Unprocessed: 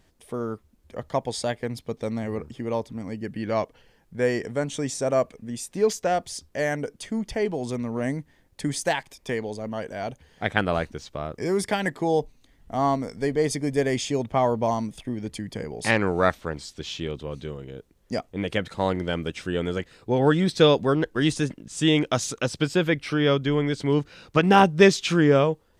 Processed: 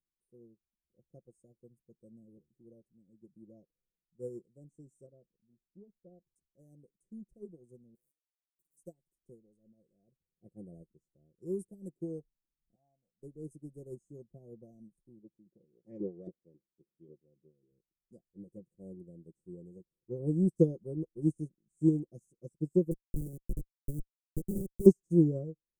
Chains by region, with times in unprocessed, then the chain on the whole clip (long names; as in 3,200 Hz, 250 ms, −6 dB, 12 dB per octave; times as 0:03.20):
0:05.06–0:06.36: head-to-tape spacing loss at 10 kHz 43 dB + saturating transformer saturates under 690 Hz
0:07.95–0:08.77: high-pass filter 1,000 Hz 24 dB per octave + wrap-around overflow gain 36.5 dB
0:12.75–0:13.23: low-pass filter 5,800 Hz + low shelf with overshoot 580 Hz −14 dB, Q 3
0:15.19–0:17.71: meter weighting curve D + auto-filter low-pass saw up 3.7 Hz 310–4,400 Hz
0:22.91–0:24.86: low-pass filter 1,400 Hz 6 dB per octave + comparator with hysteresis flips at −16.5 dBFS
whole clip: inverse Chebyshev band-stop filter 960–4,200 Hz, stop band 50 dB; comb filter 5.7 ms, depth 64%; expander for the loud parts 2.5 to 1, over −36 dBFS